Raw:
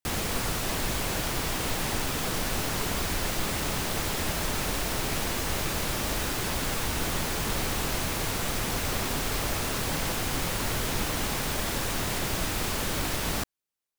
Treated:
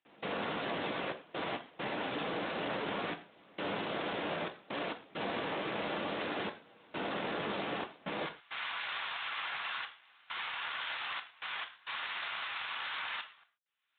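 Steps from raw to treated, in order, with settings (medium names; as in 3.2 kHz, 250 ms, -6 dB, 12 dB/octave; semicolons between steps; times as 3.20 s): high-pass 170 Hz 24 dB/octave, from 8.26 s 1 kHz; dynamic bell 570 Hz, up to +5 dB, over -49 dBFS, Q 1.5; upward compressor, threshold -36 dBFS; peak limiter -26 dBFS, peak gain reduction 9 dB; trance gate ".xxxx.x.xxxxxx." 67 bpm -24 dB; gated-style reverb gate 160 ms falling, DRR 6 dB; Speex 15 kbps 8 kHz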